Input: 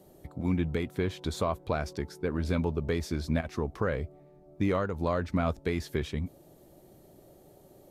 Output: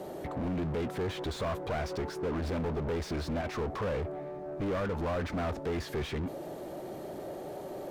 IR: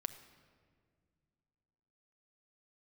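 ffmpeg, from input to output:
-filter_complex "[0:a]asoftclip=type=hard:threshold=0.0237,asplit=2[s0][s1];[s1]highpass=f=720:p=1,volume=20,asoftclip=type=tanh:threshold=0.0237[s2];[s0][s2]amix=inputs=2:normalize=0,lowpass=f=1300:p=1,volume=0.501,volume=1.68"

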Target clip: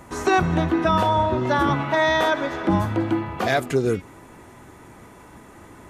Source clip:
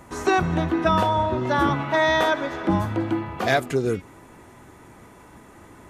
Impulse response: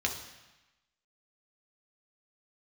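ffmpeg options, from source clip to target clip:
-af "alimiter=level_in=3.35:limit=0.891:release=50:level=0:latency=1,volume=0.376"

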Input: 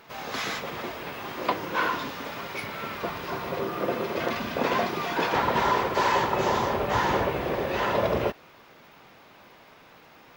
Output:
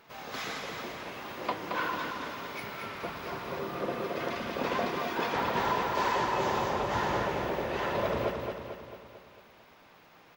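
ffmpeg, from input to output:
-af "aecho=1:1:223|446|669|892|1115|1338|1561:0.562|0.304|0.164|0.0885|0.0478|0.0258|0.0139,volume=0.473"

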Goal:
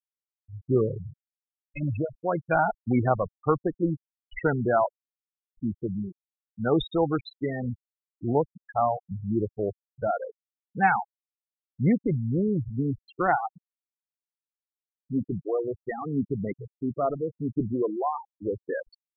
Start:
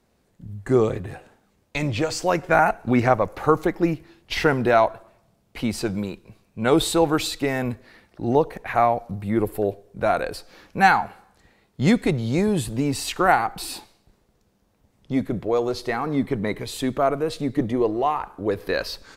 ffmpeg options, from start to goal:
-af "adynamicequalizer=threshold=0.0141:dfrequency=130:dqfactor=1.1:tfrequency=130:tqfactor=1.1:attack=5:release=100:ratio=0.375:range=2:mode=boostabove:tftype=bell,afftfilt=real='re*gte(hypot(re,im),0.224)':imag='im*gte(hypot(re,im),0.224)':win_size=1024:overlap=0.75,volume=0.531"

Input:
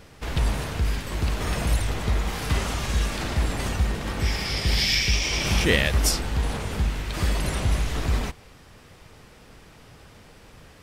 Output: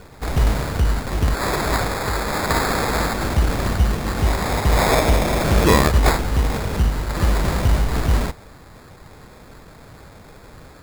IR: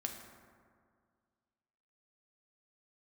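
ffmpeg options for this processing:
-filter_complex "[0:a]asettb=1/sr,asplit=3[s0][s1][s2];[s0]atrim=end=1.344[s3];[s1]atrim=start=1.34:end=3.13,asetpts=PTS-STARTPTS,afade=t=in:d=0.004:c=qsin,afade=t=out:st=1.786:d=0.004:c=qsin,tiltshelf=f=970:g=-9[s4];[s2]atrim=start=3.126[s5];[s3][s4]acrossfade=d=0.004:c1=hsin:c2=qsin[s6];[s6][s5]acrossfade=d=0.004:c1=qsin:c2=hsin,acrusher=samples=15:mix=1:aa=0.000001,volume=2"

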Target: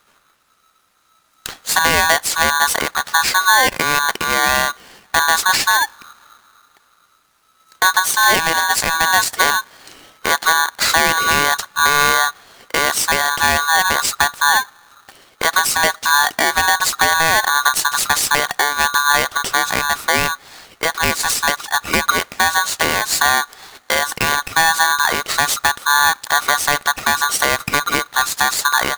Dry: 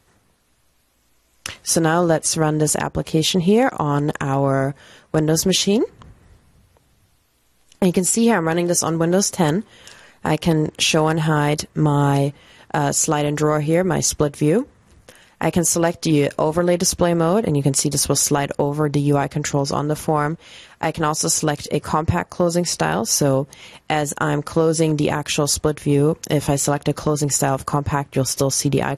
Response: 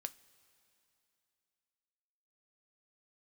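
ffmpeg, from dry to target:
-filter_complex "[0:a]asplit=2[s0][s1];[1:a]atrim=start_sample=2205,lowpass=6000[s2];[s1][s2]afir=irnorm=-1:irlink=0,volume=0.422[s3];[s0][s3]amix=inputs=2:normalize=0,aeval=exprs='val(0)*sgn(sin(2*PI*1300*n/s))':c=same"

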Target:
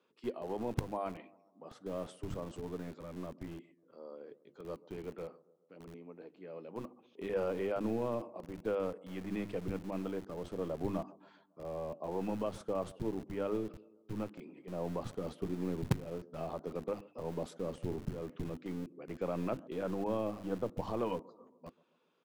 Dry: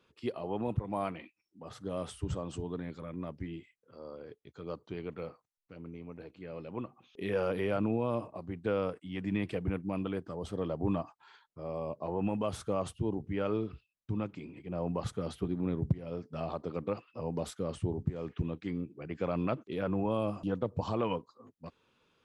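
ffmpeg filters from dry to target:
-filter_complex "[0:a]aemphasis=mode=reproduction:type=cd,bandreject=f=50:t=h:w=6,bandreject=f=100:t=h:w=6,bandreject=f=150:t=h:w=6,bandreject=f=200:t=h:w=6,bandreject=f=250:t=h:w=6,bandreject=f=300:t=h:w=6,bandreject=f=350:t=h:w=6,acrossover=split=180|1100|4300[s0][s1][s2][s3];[s0]acrusher=bits=5:dc=4:mix=0:aa=0.000001[s4];[s1]aecho=1:1:137|274|411|548:0.1|0.052|0.027|0.0141[s5];[s2]flanger=delay=3.8:depth=7.8:regen=-84:speed=0.9:shape=triangular[s6];[s4][s5][s6][s3]amix=inputs=4:normalize=0,volume=0.75"

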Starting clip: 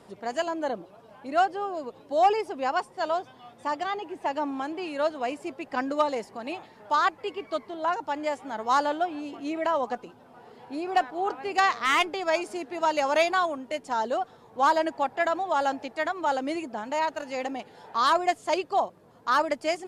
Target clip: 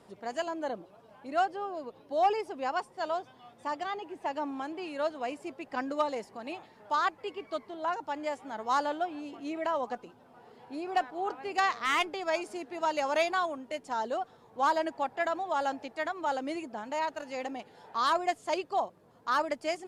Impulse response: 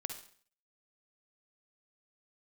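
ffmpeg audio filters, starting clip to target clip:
-filter_complex "[0:a]asettb=1/sr,asplit=3[s0][s1][s2];[s0]atrim=end=1.564[s3];[s1]atrim=start=1.56:end=2.29,asetpts=PTS-STARTPTS,afade=t=in:d=0.004:c=qsin,afade=t=out:st=0.726:d=0.004:c=qsin,equalizer=f=7500:w=3.3:g=-6.5[s4];[s2]atrim=start=2.286[s5];[s3][s4]acrossfade=d=0.004:c1=hsin:c2=qsin[s6];[s6][s5]acrossfade=d=0.004:c1=qsin:c2=hsin,volume=0.562"

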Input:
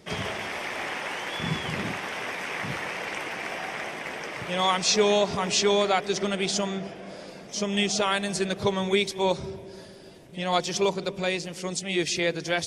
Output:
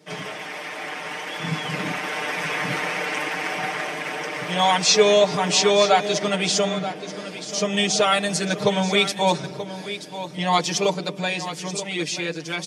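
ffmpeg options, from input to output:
-filter_complex "[0:a]highpass=f=150:w=0.5412,highpass=f=150:w=1.3066,aecho=1:1:6.6:0.97,dynaudnorm=f=370:g=11:m=3.16,asplit=2[s0][s1];[s1]aecho=0:1:932:0.251[s2];[s0][s2]amix=inputs=2:normalize=0,volume=0.668"

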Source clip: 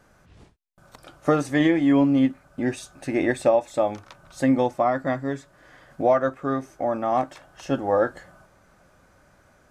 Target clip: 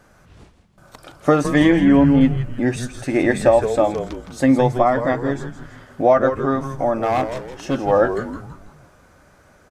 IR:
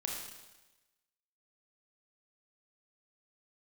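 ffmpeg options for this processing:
-filter_complex "[0:a]asettb=1/sr,asplit=3[s0][s1][s2];[s0]atrim=end=1.724[s3];[s1]atrim=start=1.72:end=2.21,asetpts=PTS-STARTPTS,afade=t=in:d=0.004:c=qsin,afade=t=out:st=0.486:d=0.004:c=qsin,acrossover=split=2900[s4][s5];[s5]acompressor=threshold=0.00158:ratio=4:attack=1:release=60[s6];[s4][s6]amix=inputs=2:normalize=0[s7];[s2]atrim=start=2.206[s8];[s3][s7]acrossfade=d=0.004:c1=hsin:c2=qsin[s9];[s9][s8]acrossfade=d=0.004:c1=qsin:c2=hsin,asettb=1/sr,asplit=3[s10][s11][s12];[s10]atrim=end=7.004[s13];[s11]atrim=start=7:end=7.8,asetpts=PTS-STARTPTS,afade=t=in:d=0.004:c=qsin,afade=t=out:st=0.796:d=0.004:c=qsin,volume=9.44,asoftclip=hard,volume=0.106[s14];[s12]atrim=start=7.796[s15];[s13][s14]acrossfade=d=0.004:c1=hsin:c2=qsin[s16];[s16][s15]acrossfade=d=0.004:c1=qsin:c2=hsin,asplit=2[s17][s18];[s18]asplit=5[s19][s20][s21][s22][s23];[s19]adelay=164,afreqshift=-130,volume=0.355[s24];[s20]adelay=328,afreqshift=-260,volume=0.164[s25];[s21]adelay=492,afreqshift=-390,volume=0.075[s26];[s22]adelay=656,afreqshift=-520,volume=0.0347[s27];[s23]adelay=820,afreqshift=-650,volume=0.0158[s28];[s24][s25][s26][s27][s28]amix=inputs=5:normalize=0[s29];[s17][s29]amix=inputs=2:normalize=0,volume=1.78"

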